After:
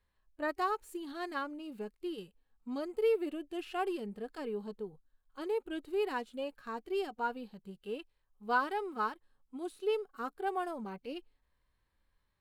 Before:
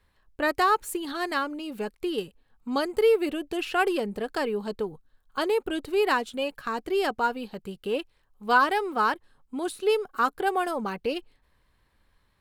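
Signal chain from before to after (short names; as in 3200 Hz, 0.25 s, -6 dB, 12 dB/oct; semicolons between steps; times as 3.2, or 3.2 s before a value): harmonic-percussive split percussive -12 dB; gain -8.5 dB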